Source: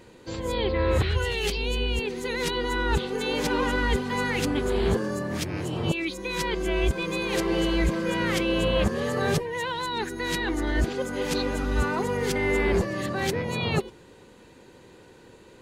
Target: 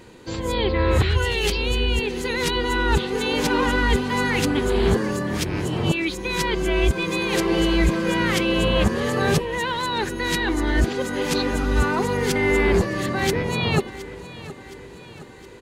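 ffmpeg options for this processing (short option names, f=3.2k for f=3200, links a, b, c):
-filter_complex "[0:a]equalizer=f=550:w=3.6:g=-3.5,asplit=2[a][b];[b]aecho=0:1:717|1434|2151|2868|3585:0.15|0.0808|0.0436|0.0236|0.0127[c];[a][c]amix=inputs=2:normalize=0,volume=5dB"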